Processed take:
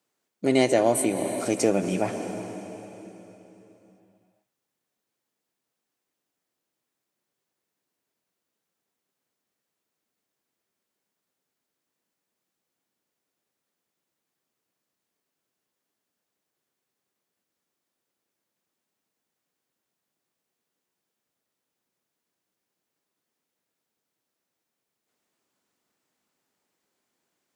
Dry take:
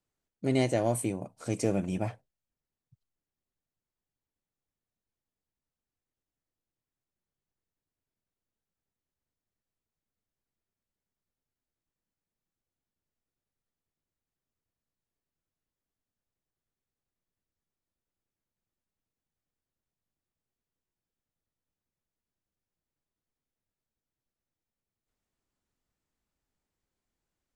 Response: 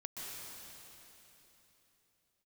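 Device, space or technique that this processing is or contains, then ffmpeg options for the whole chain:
ducked reverb: -filter_complex "[0:a]highpass=250,asplit=3[a][b][c];[1:a]atrim=start_sample=2205[d];[b][d]afir=irnorm=-1:irlink=0[e];[c]apad=whole_len=1215193[f];[e][f]sidechaincompress=threshold=-36dB:ratio=8:attack=16:release=125,volume=-2.5dB[g];[a][g]amix=inputs=2:normalize=0,volume=7dB"

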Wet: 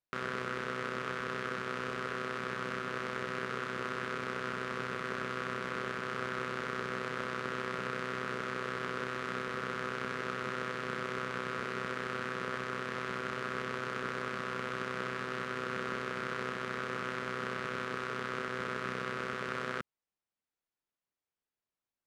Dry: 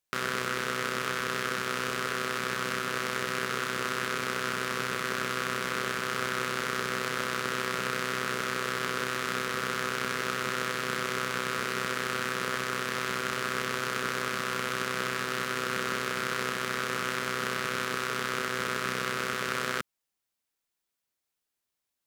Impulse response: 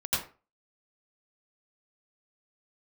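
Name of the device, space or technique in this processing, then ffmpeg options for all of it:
through cloth: -af "lowpass=9.2k,highshelf=f=3.4k:g=-14.5,volume=-3.5dB"

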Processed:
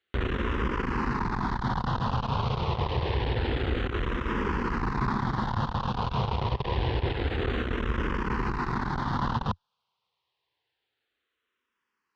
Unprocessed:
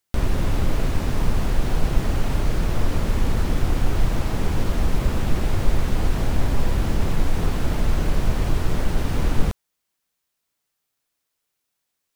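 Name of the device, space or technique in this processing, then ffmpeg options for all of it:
barber-pole phaser into a guitar amplifier: -filter_complex "[0:a]asplit=2[a][b];[b]afreqshift=-0.27[c];[a][c]amix=inputs=2:normalize=1,asoftclip=type=tanh:threshold=-20.5dB,highpass=80,equalizer=f=89:t=q:w=4:g=-7,equalizer=f=170:t=q:w=4:g=-9,equalizer=f=290:t=q:w=4:g=-7,equalizer=f=620:t=q:w=4:g=-10,equalizer=f=1k:t=q:w=4:g=7,equalizer=f=2.3k:t=q:w=4:g=-5,lowpass=f=3.8k:w=0.5412,lowpass=f=3.8k:w=1.3066,volume=7.5dB"

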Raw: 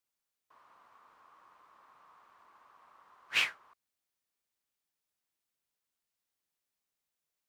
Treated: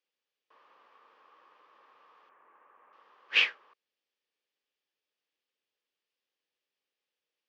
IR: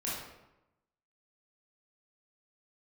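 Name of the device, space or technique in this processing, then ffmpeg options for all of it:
phone earpiece: -filter_complex "[0:a]highpass=420,equalizer=f=480:t=q:w=4:g=4,equalizer=f=690:t=q:w=4:g=-10,equalizer=f=990:t=q:w=4:g=-9,equalizer=f=1.4k:t=q:w=4:g=-9,equalizer=f=2.1k:t=q:w=4:g=-5,equalizer=f=4k:t=q:w=4:g=-6,lowpass=f=4.3k:w=0.5412,lowpass=f=4.3k:w=1.3066,asettb=1/sr,asplit=3[a][b][c];[a]atrim=end=2.294[d];[b]atrim=start=2.29:end=2.93,asetpts=PTS-STARTPTS,afade=t=in:d=0.004:c=qsin,afade=t=out:st=0.636:d=0.004:c=qsin,lowpass=f=2.2k:w=0.5412,lowpass=f=2.2k:w=1.3066[e];[c]atrim=start=2.926[f];[d][e]acrossfade=d=0.004:c1=hsin:c2=qsin[g];[g][f]acrossfade=d=0.004:c1=qsin:c2=hsin,volume=8dB"

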